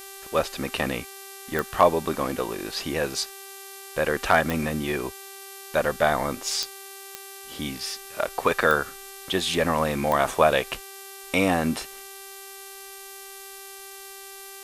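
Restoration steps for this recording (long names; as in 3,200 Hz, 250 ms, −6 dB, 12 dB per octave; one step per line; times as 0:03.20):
clipped peaks rebuilt −5.5 dBFS
click removal
hum removal 391.3 Hz, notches 35
noise reduction from a noise print 28 dB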